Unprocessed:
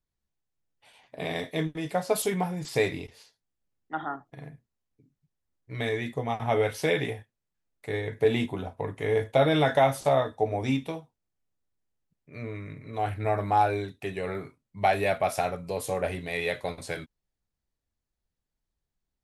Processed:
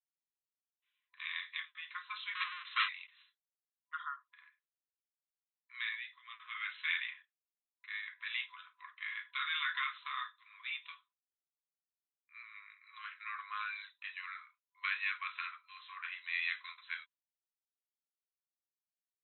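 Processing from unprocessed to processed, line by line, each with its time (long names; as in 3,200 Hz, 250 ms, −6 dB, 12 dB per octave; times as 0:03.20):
0:02.35–0:02.89: each half-wave held at its own peak
0:05.95–0:06.55: guitar amp tone stack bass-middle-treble 10-0-10
whole clip: noise gate with hold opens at −46 dBFS; brick-wall band-pass 1,000–4,100 Hz; dynamic equaliser 2,400 Hz, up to +3 dB, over −45 dBFS, Q 1.8; level −5 dB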